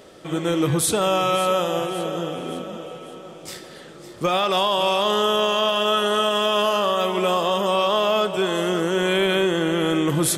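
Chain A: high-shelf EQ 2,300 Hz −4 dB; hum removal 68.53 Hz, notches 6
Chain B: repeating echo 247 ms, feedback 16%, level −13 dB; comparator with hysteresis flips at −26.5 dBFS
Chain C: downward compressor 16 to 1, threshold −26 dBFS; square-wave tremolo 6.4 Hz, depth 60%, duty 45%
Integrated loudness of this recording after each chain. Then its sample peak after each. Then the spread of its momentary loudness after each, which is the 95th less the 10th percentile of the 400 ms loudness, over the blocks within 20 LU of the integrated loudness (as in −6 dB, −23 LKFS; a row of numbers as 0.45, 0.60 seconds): −22.0, −22.0, −33.0 LKFS; −11.0, −15.5, −18.5 dBFS; 13, 6, 8 LU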